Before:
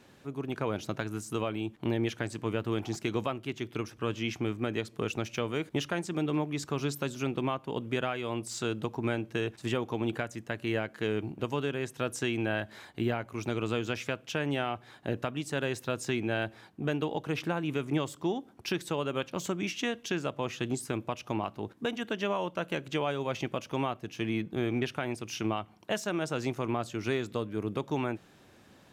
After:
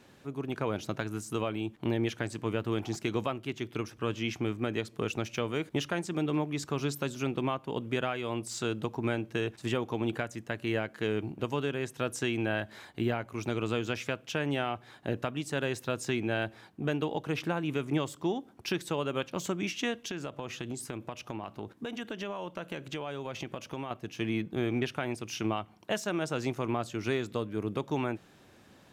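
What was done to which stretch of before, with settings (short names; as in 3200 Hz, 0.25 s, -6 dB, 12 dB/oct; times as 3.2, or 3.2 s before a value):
20.09–23.91 compressor 5:1, threshold -33 dBFS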